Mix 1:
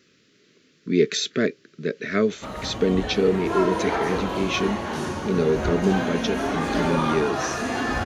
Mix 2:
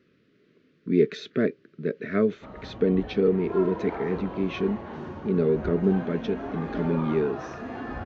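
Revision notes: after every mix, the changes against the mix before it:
background -7.0 dB; master: add tape spacing loss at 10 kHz 37 dB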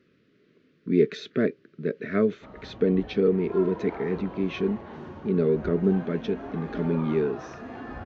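background -3.5 dB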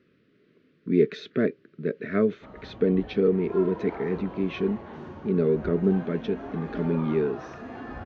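speech: add Bessel low-pass 4500 Hz

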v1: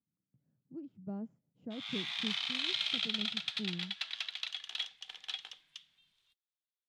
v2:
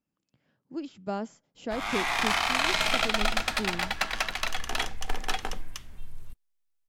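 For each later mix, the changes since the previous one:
speech: remove band-pass 140 Hz, Q 1.6; background: remove band-pass 3500 Hz, Q 4.6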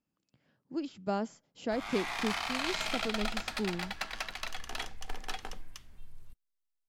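background -9.0 dB; master: add bell 4600 Hz +2.5 dB 0.37 oct

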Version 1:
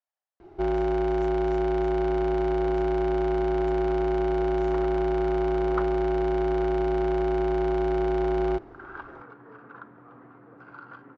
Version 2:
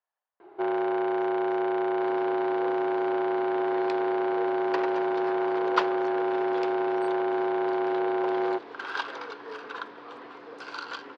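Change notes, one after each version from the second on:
speech +3.0 dB; second sound: remove ladder low-pass 1700 Hz, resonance 40%; master: add speaker cabinet 410–4000 Hz, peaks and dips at 450 Hz +6 dB, 1000 Hz +7 dB, 1600 Hz +4 dB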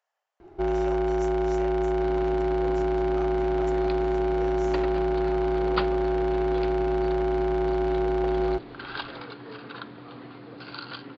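speech +11.5 dB; second sound: add steep low-pass 4600 Hz 96 dB/oct; master: remove speaker cabinet 410–4000 Hz, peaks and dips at 450 Hz +6 dB, 1000 Hz +7 dB, 1600 Hz +4 dB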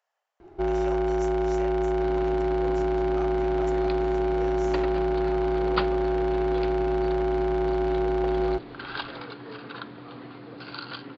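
reverb: on, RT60 0.65 s

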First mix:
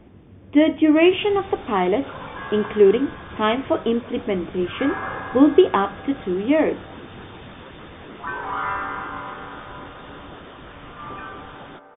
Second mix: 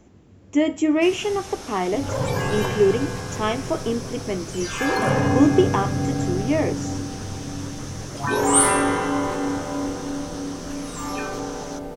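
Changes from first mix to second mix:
speech -4.0 dB; second sound: remove band-pass 1300 Hz, Q 2.5; master: remove brick-wall FIR low-pass 3700 Hz

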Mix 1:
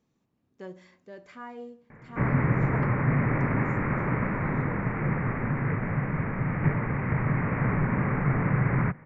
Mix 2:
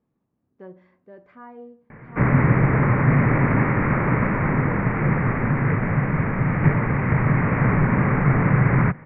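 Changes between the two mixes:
speech: add LPF 1500 Hz 12 dB/oct; background +7.0 dB

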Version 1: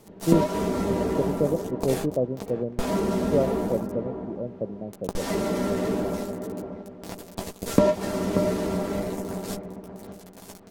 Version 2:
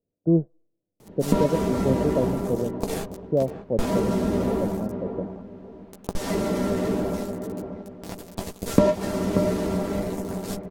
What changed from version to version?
background: entry +1.00 s; master: add low shelf 200 Hz +4 dB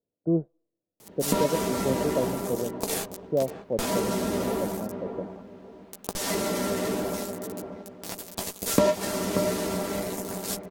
master: add tilt +2.5 dB/oct

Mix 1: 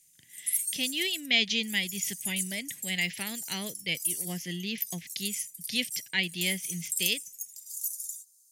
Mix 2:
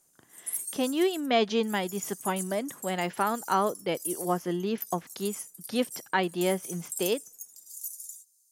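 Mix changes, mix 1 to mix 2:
background +3.5 dB; master: remove EQ curve 160 Hz 0 dB, 370 Hz -14 dB, 610 Hz -16 dB, 1300 Hz -24 dB, 2000 Hz +8 dB

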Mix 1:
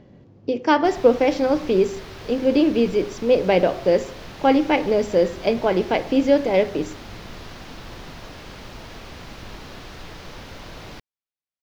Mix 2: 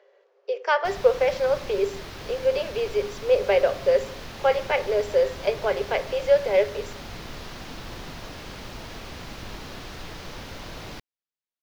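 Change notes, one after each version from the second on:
speech: add rippled Chebyshev high-pass 390 Hz, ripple 6 dB; background: add high shelf 6300 Hz +4 dB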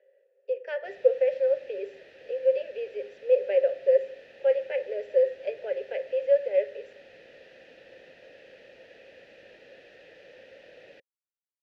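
master: add vowel filter e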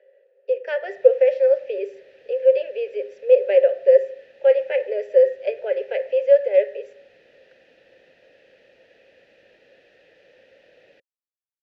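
speech +7.5 dB; background -3.5 dB

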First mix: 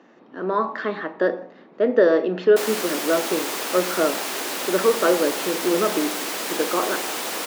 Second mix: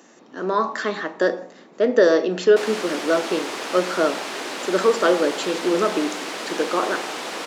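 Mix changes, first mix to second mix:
speech: remove air absorption 300 m; background: add air absorption 71 m

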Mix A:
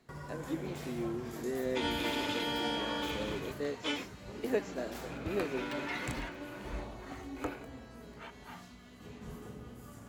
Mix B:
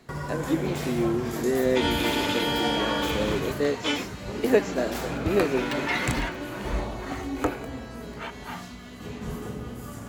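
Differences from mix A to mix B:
speech +11.5 dB; first sound +12.0 dB; second sound +8.0 dB

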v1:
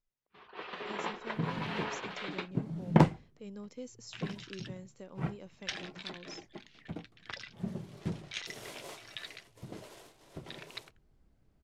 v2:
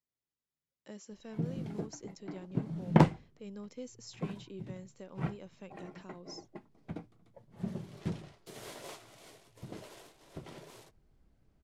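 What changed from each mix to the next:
first sound: muted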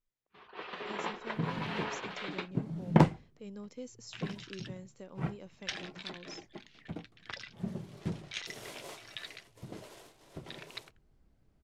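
first sound: unmuted

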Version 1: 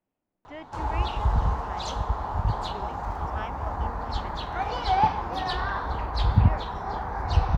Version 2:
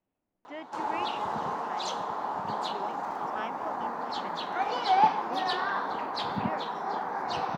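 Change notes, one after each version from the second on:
background: add HPF 210 Hz 24 dB/oct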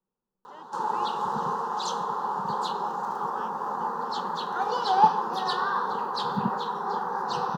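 background +5.5 dB; master: add fixed phaser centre 440 Hz, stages 8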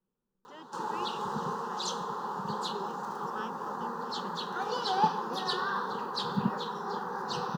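speech +5.0 dB; master: add bell 830 Hz -8 dB 1.4 oct

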